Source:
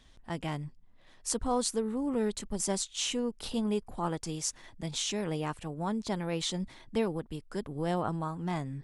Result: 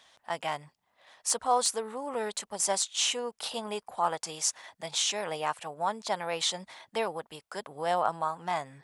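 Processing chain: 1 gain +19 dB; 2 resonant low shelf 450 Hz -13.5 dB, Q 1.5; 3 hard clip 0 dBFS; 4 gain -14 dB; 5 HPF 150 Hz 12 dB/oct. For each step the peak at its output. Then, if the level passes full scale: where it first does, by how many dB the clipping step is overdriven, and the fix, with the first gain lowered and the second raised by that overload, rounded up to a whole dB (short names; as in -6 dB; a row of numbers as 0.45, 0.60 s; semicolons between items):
+7.5, +7.5, 0.0, -14.0, -13.5 dBFS; step 1, 7.5 dB; step 1 +11 dB, step 4 -6 dB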